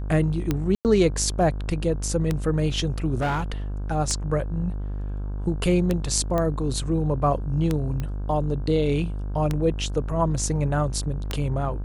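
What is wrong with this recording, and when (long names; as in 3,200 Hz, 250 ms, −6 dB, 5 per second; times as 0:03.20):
mains buzz 50 Hz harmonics 33 −29 dBFS
scratch tick 33 1/3 rpm −10 dBFS
0:00.75–0:00.85: drop-out 98 ms
0:03.18–0:03.52: clipping −20.5 dBFS
0:06.38: click −13 dBFS
0:08.00: click −17 dBFS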